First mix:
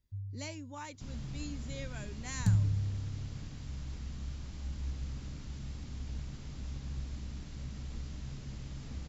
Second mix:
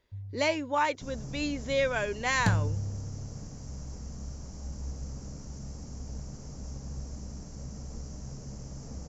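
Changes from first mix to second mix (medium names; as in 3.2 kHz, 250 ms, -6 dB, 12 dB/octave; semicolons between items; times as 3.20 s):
second sound: add FFT filter 200 Hz 0 dB, 340 Hz -12 dB, 700 Hz -12 dB, 2 kHz -24 dB, 3.7 kHz -27 dB, 5.7 kHz +3 dB; master: remove FFT filter 110 Hz 0 dB, 230 Hz -6 dB, 470 Hz -21 dB, 760 Hz -19 dB, 1.8 kHz -18 dB, 3.2 kHz -15 dB, 9 kHz -1 dB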